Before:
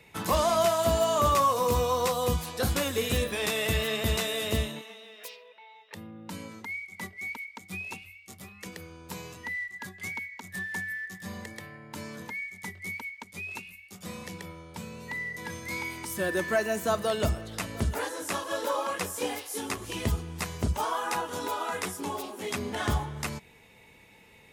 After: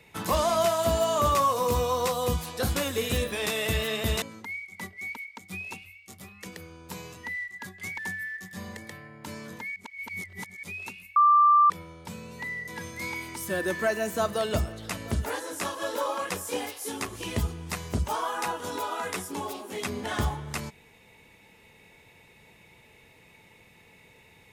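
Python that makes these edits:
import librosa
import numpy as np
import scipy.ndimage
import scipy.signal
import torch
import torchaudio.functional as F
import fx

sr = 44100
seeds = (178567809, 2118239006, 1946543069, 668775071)

y = fx.edit(x, sr, fx.cut(start_s=4.22, length_s=2.2),
    fx.cut(start_s=10.18, length_s=0.49),
    fx.reverse_span(start_s=12.45, length_s=0.87),
    fx.bleep(start_s=13.85, length_s=0.54, hz=1180.0, db=-15.0), tone=tone)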